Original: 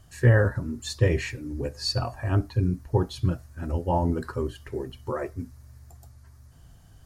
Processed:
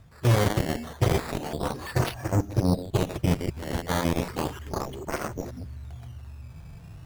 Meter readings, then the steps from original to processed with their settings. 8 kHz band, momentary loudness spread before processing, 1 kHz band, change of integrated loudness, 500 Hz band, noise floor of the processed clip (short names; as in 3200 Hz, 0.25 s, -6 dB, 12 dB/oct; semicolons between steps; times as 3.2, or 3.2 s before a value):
+4.0 dB, 13 LU, +2.0 dB, -0.5 dB, -1.0 dB, -46 dBFS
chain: reverse delay 0.153 s, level -9 dB; bell 170 Hz +6.5 dB 1.1 oct; decimation with a swept rate 12×, swing 100% 0.34 Hz; reverse; compressor 4:1, threshold -30 dBFS, peak gain reduction 17 dB; reverse; harmonic-percussive split harmonic +8 dB; added harmonics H 7 -11 dB, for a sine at -12.5 dBFS